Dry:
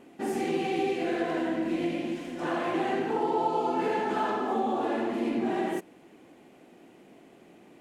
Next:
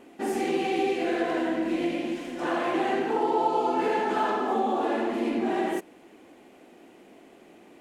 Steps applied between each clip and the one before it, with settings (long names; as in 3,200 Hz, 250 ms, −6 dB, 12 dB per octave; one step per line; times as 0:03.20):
parametric band 140 Hz −9 dB 0.91 octaves
level +3 dB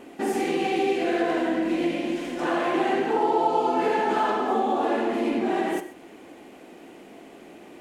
in parallel at 0 dB: downward compressor, threshold −36 dBFS, peak gain reduction 15.5 dB
on the sum: reverb whose tail is shaped and stops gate 150 ms flat, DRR 10 dB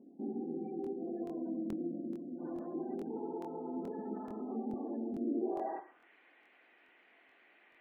band-pass filter sweep 220 Hz → 1,900 Hz, 0:05.20–0:06.10
gate on every frequency bin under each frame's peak −30 dB strong
regular buffer underruns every 0.43 s, samples 1,024, repeat, from 0:00.82
level −6.5 dB